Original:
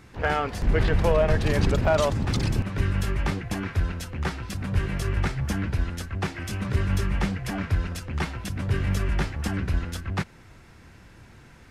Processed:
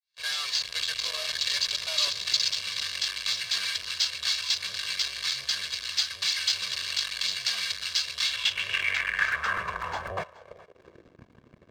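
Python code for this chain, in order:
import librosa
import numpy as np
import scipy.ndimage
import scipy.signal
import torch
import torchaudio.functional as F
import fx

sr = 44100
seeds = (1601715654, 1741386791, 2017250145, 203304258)

p1 = fx.fade_in_head(x, sr, length_s=0.75)
p2 = fx.tone_stack(p1, sr, knobs='5-5-5')
p3 = fx.fuzz(p2, sr, gain_db=56.0, gate_db=-58.0)
p4 = p2 + (p3 * librosa.db_to_amplitude(-10.0))
p5 = p4 + 0.96 * np.pad(p4, (int(1.8 * sr / 1000.0), 0))[:len(p4)]
p6 = np.repeat(p5[::4], 4)[:len(p5)]
p7 = fx.filter_sweep_bandpass(p6, sr, from_hz=4300.0, to_hz=270.0, start_s=8.19, end_s=11.23, q=3.2)
p8 = p7 + fx.echo_single(p7, sr, ms=422, db=-21.0, dry=0)
p9 = fx.buffer_crackle(p8, sr, first_s=0.82, period_s=0.25, block=128, kind='repeat')
y = p9 * librosa.db_to_amplitude(5.5)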